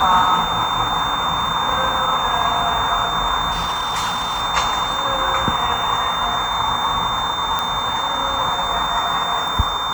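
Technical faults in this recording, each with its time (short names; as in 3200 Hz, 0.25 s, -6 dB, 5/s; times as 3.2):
tone 3600 Hz -24 dBFS
3.51–4.42 clipped -18 dBFS
7.59 pop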